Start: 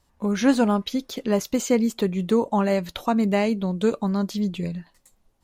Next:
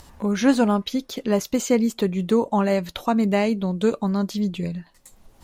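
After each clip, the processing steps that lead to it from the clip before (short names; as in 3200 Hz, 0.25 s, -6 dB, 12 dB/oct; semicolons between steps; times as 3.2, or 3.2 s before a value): upward compressor, threshold -34 dBFS; gain +1 dB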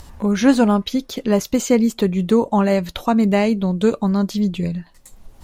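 low shelf 110 Hz +7.5 dB; gain +3 dB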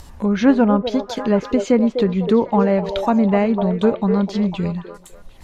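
treble ducked by the level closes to 2000 Hz, closed at -12.5 dBFS; delay with a stepping band-pass 0.25 s, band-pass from 490 Hz, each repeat 0.7 oct, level -4.5 dB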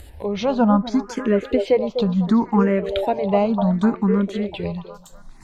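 endless phaser +0.68 Hz; gain +1.5 dB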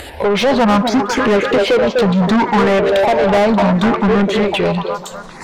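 overdrive pedal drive 30 dB, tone 2600 Hz, clips at -5.5 dBFS; warbling echo 0.185 s, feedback 73%, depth 204 cents, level -24 dB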